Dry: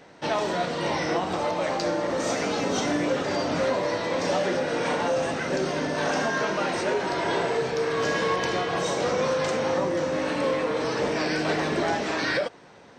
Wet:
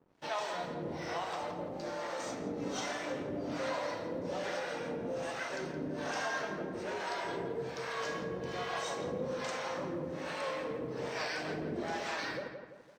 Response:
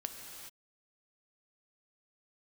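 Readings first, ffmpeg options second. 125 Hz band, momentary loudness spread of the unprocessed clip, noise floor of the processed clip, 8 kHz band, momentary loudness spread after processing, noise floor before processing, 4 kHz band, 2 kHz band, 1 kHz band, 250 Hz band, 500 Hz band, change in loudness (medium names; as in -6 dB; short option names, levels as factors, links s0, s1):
-11.0 dB, 2 LU, -47 dBFS, -11.5 dB, 3 LU, -49 dBFS, -11.5 dB, -11.0 dB, -11.0 dB, -12.0 dB, -12.5 dB, -12.0 dB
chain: -filter_complex "[0:a]acrossover=split=520[s0][s1];[s0]aeval=exprs='val(0)*(1-1/2+1/2*cos(2*PI*1.2*n/s))':c=same[s2];[s1]aeval=exprs='val(0)*(1-1/2-1/2*cos(2*PI*1.2*n/s))':c=same[s3];[s2][s3]amix=inputs=2:normalize=0,aeval=exprs='sgn(val(0))*max(abs(val(0))-0.00141,0)':c=same,asplit=2[s4][s5];[s5]adelay=169,lowpass=f=2200:p=1,volume=0.473,asplit=2[s6][s7];[s7]adelay=169,lowpass=f=2200:p=1,volume=0.48,asplit=2[s8][s9];[s9]adelay=169,lowpass=f=2200:p=1,volume=0.48,asplit=2[s10][s11];[s11]adelay=169,lowpass=f=2200:p=1,volume=0.48,asplit=2[s12][s13];[s13]adelay=169,lowpass=f=2200:p=1,volume=0.48,asplit=2[s14][s15];[s15]adelay=169,lowpass=f=2200:p=1,volume=0.48[s16];[s4][s6][s8][s10][s12][s14][s16]amix=inputs=7:normalize=0,volume=0.447"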